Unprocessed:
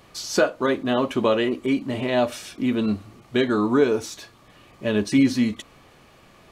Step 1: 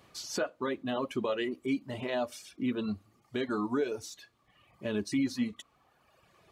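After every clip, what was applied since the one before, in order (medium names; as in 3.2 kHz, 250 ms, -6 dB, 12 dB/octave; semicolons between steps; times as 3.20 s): reverb removal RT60 1.4 s; high-pass 56 Hz; peak limiter -13.5 dBFS, peak gain reduction 7 dB; trim -8 dB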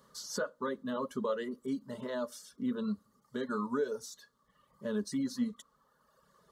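static phaser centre 490 Hz, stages 8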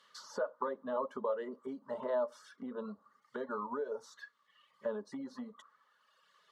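compression, threshold -36 dBFS, peak gain reduction 9 dB; auto-wah 750–2900 Hz, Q 2.5, down, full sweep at -38.5 dBFS; trim +12 dB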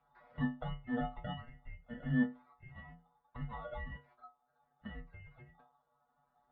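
bit-reversed sample order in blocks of 16 samples; inharmonic resonator 100 Hz, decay 0.33 s, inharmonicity 0.002; mistuned SSB -370 Hz 280–2800 Hz; trim +8 dB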